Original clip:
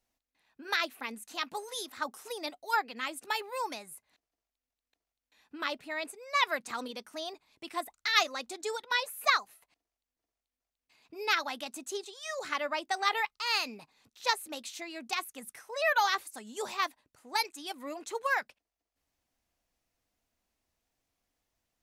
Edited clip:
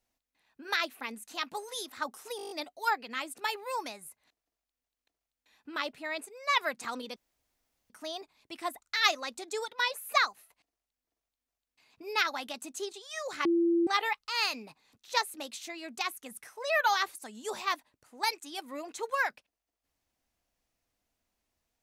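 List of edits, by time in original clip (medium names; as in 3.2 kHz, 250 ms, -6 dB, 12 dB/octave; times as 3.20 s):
2.37 s: stutter 0.02 s, 8 plays
7.02 s: insert room tone 0.74 s
12.57–12.99 s: bleep 339 Hz -22.5 dBFS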